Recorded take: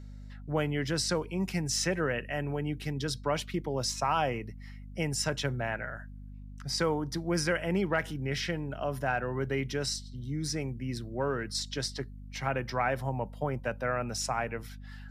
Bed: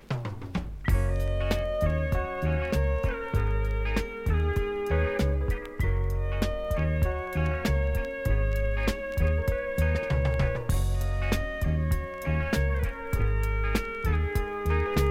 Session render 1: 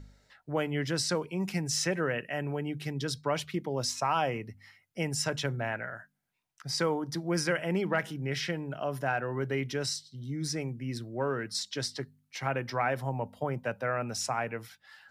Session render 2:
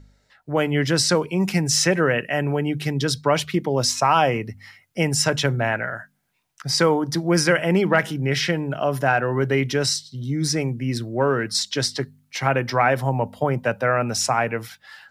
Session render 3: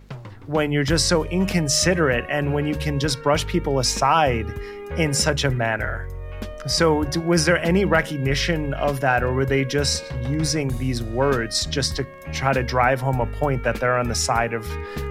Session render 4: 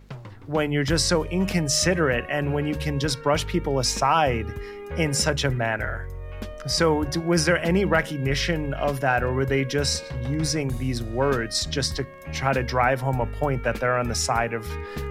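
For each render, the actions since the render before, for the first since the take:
de-hum 50 Hz, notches 5
AGC gain up to 11 dB
add bed -4.5 dB
gain -2.5 dB

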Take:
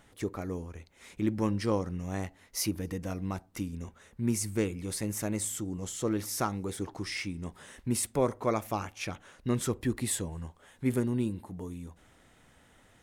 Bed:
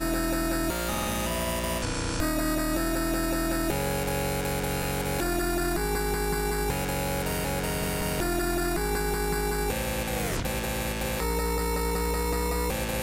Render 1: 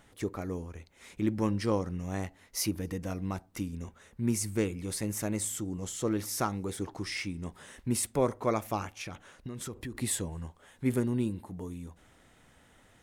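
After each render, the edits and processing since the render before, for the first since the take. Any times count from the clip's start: 8.96–9.95 compressor 10:1, threshold -35 dBFS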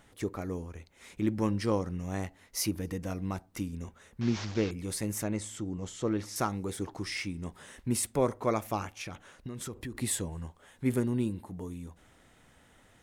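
4.21–4.71 delta modulation 32 kbps, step -35.5 dBFS; 5.23–6.36 air absorption 80 m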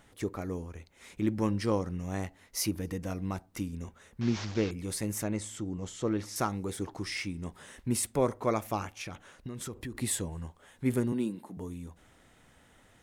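11.12–11.57 HPF 170 Hz 24 dB/oct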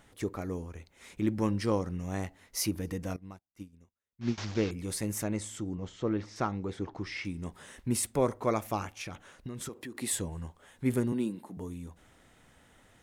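3.16–4.38 upward expander 2.5:1, over -51 dBFS; 5.75–7.25 air absorption 150 m; 9.69–10.13 HPF 230 Hz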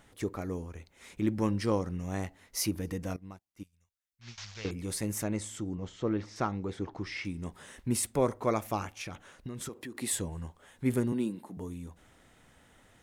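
3.63–4.65 passive tone stack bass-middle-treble 10-0-10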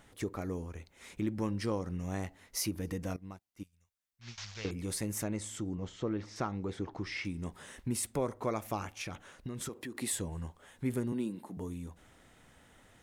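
compressor 2:1, threshold -33 dBFS, peak gain reduction 7 dB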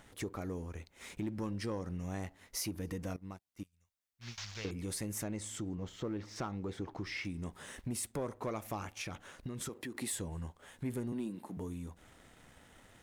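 sample leveller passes 1; compressor 1.5:1, threshold -47 dBFS, peak gain reduction 7.5 dB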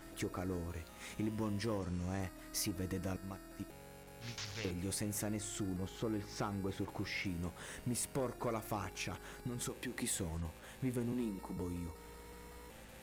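add bed -26.5 dB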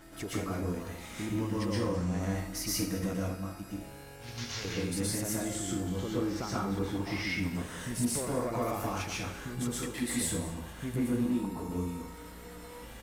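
echo 0.212 s -17 dB; plate-style reverb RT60 0.53 s, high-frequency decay 0.9×, pre-delay 0.105 s, DRR -5.5 dB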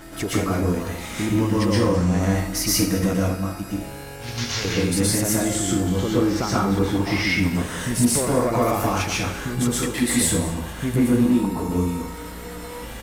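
gain +12 dB

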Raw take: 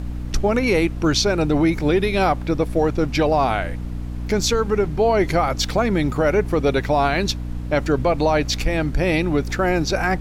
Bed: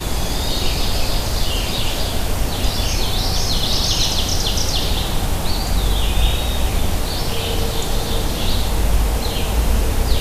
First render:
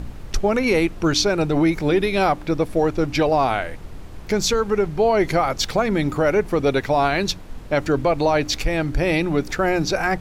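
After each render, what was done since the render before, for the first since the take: de-hum 60 Hz, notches 5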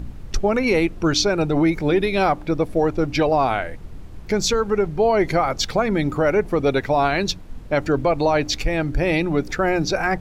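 denoiser 6 dB, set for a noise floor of -36 dBFS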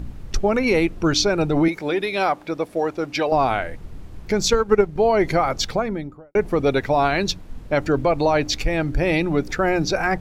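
1.68–3.32 HPF 490 Hz 6 dB/oct; 4.43–4.99 transient shaper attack +8 dB, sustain -7 dB; 5.55–6.35 studio fade out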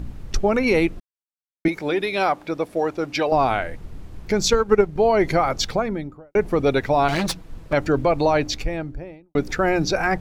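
1–1.65 mute; 7.08–7.73 minimum comb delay 6.1 ms; 8.27–9.35 studio fade out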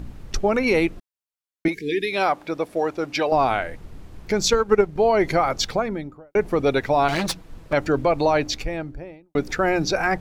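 1.74–2.12 spectral delete 480–1600 Hz; low shelf 220 Hz -4 dB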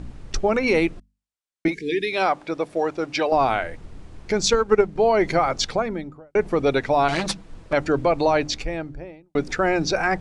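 steep low-pass 10000 Hz 48 dB/oct; notches 50/100/150/200/250 Hz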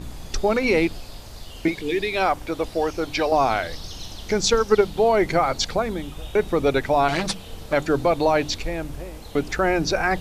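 add bed -19.5 dB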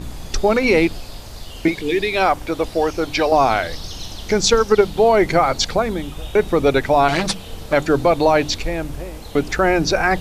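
gain +4.5 dB; limiter -3 dBFS, peak gain reduction 2.5 dB

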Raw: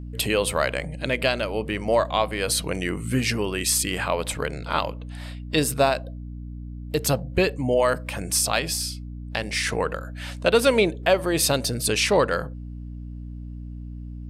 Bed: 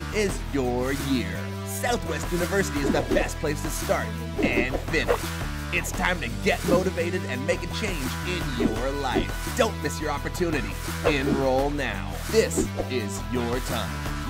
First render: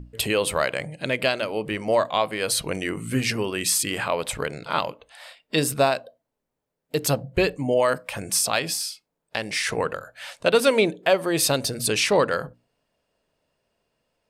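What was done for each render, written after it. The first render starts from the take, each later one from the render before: notches 60/120/180/240/300 Hz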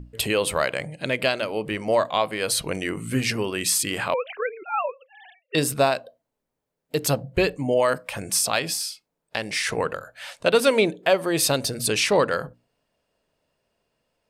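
4.14–5.55 sine-wave speech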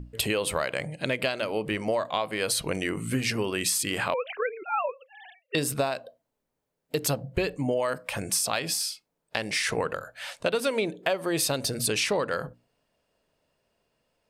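compressor 6:1, threshold -23 dBFS, peak gain reduction 10 dB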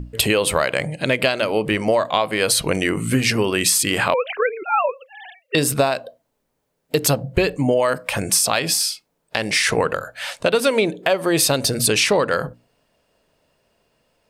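gain +9 dB; limiter -3 dBFS, peak gain reduction 3 dB

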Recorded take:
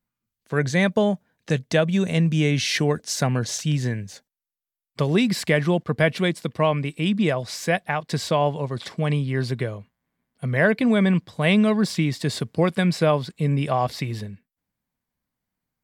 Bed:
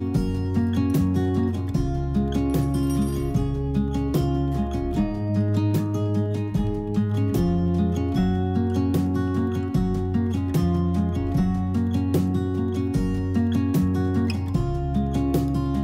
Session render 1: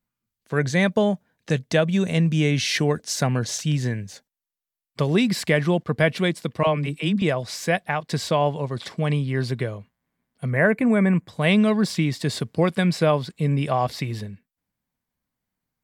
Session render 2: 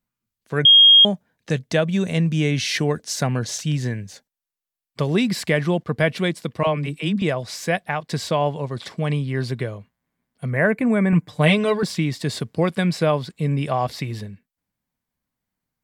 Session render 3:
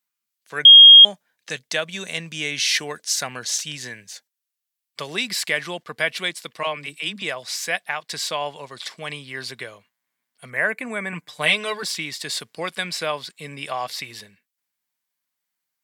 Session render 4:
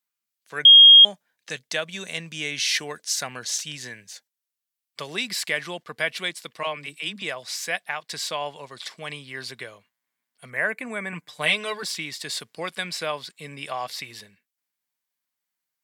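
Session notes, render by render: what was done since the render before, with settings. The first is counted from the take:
6.63–7.22 dispersion lows, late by 42 ms, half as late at 440 Hz; 10.5–11.28 band shelf 4100 Hz -15.5 dB 1.1 oct
0.65–1.05 bleep 3250 Hz -7 dBFS; 11.12–11.83 comb 6.7 ms, depth 98%
HPF 730 Hz 6 dB/oct; tilt shelf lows -5.5 dB, about 1200 Hz
gain -3 dB

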